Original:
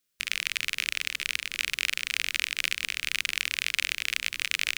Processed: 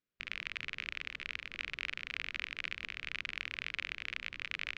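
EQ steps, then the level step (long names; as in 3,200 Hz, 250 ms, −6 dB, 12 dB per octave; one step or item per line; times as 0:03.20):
head-to-tape spacing loss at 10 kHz 37 dB
−1.5 dB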